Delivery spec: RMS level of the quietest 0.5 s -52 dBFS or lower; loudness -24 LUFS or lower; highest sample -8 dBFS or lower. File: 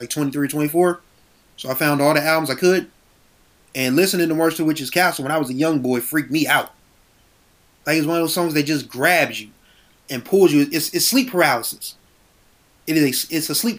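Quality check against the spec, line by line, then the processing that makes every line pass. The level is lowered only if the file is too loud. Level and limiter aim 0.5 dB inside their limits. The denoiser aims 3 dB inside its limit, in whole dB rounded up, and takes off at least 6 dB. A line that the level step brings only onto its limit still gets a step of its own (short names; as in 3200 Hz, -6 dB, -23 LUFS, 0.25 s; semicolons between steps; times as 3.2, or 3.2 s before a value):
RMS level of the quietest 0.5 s -56 dBFS: OK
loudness -18.5 LUFS: fail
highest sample -3.0 dBFS: fail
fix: gain -6 dB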